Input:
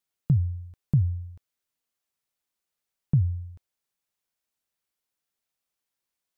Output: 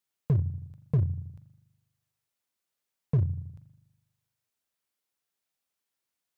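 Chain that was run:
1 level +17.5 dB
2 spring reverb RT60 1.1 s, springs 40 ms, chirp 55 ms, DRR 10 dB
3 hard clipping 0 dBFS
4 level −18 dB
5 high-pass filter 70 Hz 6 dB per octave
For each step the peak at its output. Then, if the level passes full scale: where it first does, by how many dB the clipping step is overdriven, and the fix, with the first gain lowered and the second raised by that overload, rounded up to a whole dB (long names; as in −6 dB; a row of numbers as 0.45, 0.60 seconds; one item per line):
+4.5, +4.5, 0.0, −18.0, −16.0 dBFS
step 1, 4.5 dB
step 1 +12.5 dB, step 4 −13 dB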